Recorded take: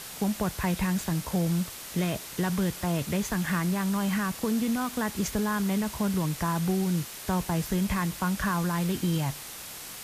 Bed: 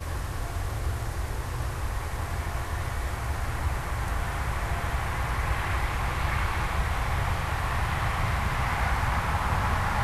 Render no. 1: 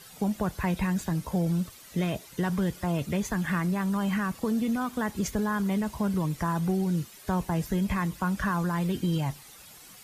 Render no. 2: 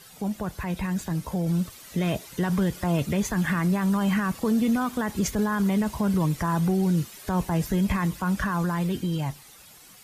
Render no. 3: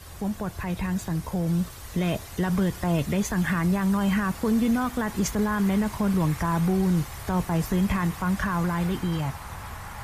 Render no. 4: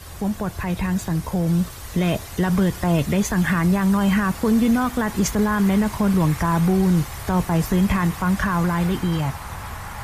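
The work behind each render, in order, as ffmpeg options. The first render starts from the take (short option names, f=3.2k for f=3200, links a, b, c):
-af "afftdn=nr=12:nf=-41"
-af "alimiter=limit=-21dB:level=0:latency=1:release=31,dynaudnorm=f=240:g=13:m=5dB"
-filter_complex "[1:a]volume=-12dB[a];[0:a][a]amix=inputs=2:normalize=0"
-af "volume=5dB"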